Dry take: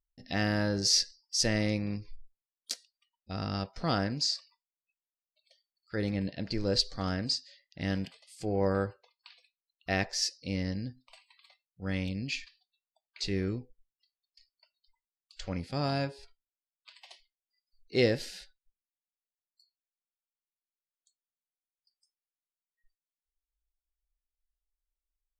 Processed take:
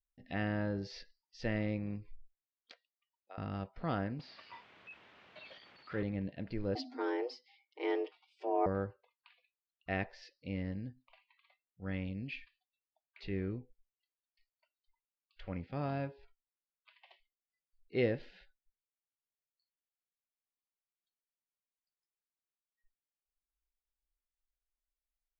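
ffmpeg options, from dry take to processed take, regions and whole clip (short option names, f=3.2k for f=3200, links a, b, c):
-filter_complex "[0:a]asettb=1/sr,asplit=3[a][b][c];[a]atrim=end=2.714[d];[b]atrim=start=2.71:end=3.38,asetpts=PTS-STARTPTS,afade=t=in:d=0.004:c=qsin,afade=t=out:st=0.666:d=0.004:c=qsin,highpass=f=500:w=0.5412,highpass=f=500:w=1.3066,highshelf=f=2.2k:g=-8[e];[c]atrim=start=3.376[f];[d][e]acrossfade=d=0.004:c1=hsin:c2=qsin[g];[g][f]acrossfade=d=0.004:c1=qsin:c2=hsin,asettb=1/sr,asplit=3[h][i][j];[h]atrim=end=4.194[k];[i]atrim=start=4.19:end=6.03,asetpts=PTS-STARTPTS,afade=t=in:d=0.004:c=qsin,afade=t=out:st=1.836:d=0.004:c=qsin,aeval=exprs='val(0)+0.5*0.0178*sgn(val(0))':c=same,acrossover=split=4100[l][m];[m]acompressor=threshold=-40dB:ratio=4:attack=1:release=60[n];[l][n]amix=inputs=2:normalize=0,highpass=94[o];[j]atrim=start=6.026[p];[k][o]acrossfade=d=0.004:c1=hsin:c2=qsin[q];[q][p]acrossfade=d=0.004:c1=qsin:c2=hsin,asettb=1/sr,asplit=3[r][s][t];[r]atrim=end=6.754[u];[s]atrim=start=6.75:end=8.66,asetpts=PTS-STARTPTS,afade=t=in:d=0.004:c=qsin,afade=t=out:st=1.906:d=0.004:c=qsin,highshelf=f=7.1k:g=11,afreqshift=240,aecho=1:1:6.5:0.98,atrim=end_sample=84231[v];[t]atrim=start=8.656[w];[u][v]acrossfade=d=0.004:c1=hsin:c2=qsin[x];[x][w]acrossfade=d=0.004:c1=qsin:c2=hsin,lowpass=f=2.9k:w=0.5412,lowpass=f=2.9k:w=1.3066,adynamicequalizer=threshold=0.00398:dfrequency=2000:dqfactor=0.71:tfrequency=2000:tqfactor=0.71:attack=5:release=100:ratio=0.375:range=3.5:mode=cutabove:tftype=bell,volume=-5.5dB"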